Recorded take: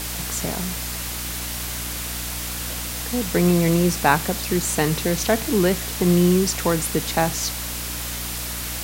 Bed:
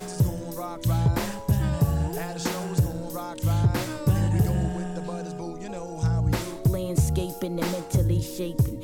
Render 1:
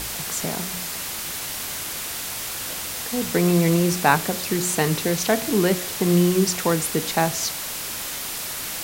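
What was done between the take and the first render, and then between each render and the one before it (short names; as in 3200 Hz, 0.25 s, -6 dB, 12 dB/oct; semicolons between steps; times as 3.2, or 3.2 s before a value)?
de-hum 60 Hz, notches 11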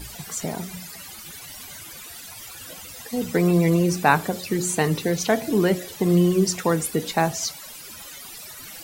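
denoiser 16 dB, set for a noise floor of -31 dBFS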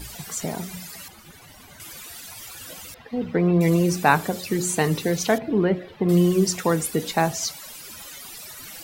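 1.08–1.8 high shelf 2300 Hz -12 dB; 2.94–3.61 air absorption 360 m; 5.38–6.09 air absorption 400 m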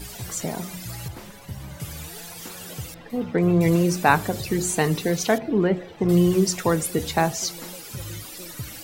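add bed -13.5 dB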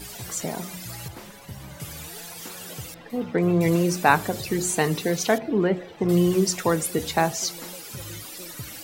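low shelf 120 Hz -8 dB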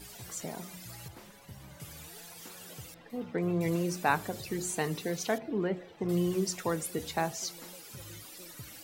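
gain -9.5 dB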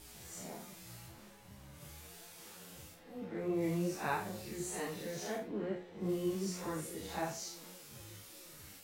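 time blur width 0.121 s; ensemble effect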